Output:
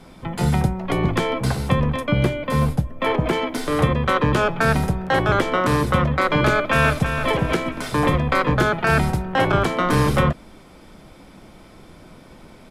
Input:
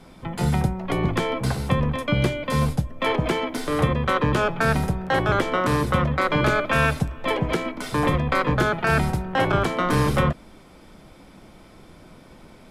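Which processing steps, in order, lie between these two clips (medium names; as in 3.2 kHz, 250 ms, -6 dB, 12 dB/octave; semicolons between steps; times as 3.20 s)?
2.00–3.33 s: peaking EQ 5.8 kHz -6 dB 2.1 oct; 6.51–7.17 s: echo throw 330 ms, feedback 45%, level -7.5 dB; trim +2.5 dB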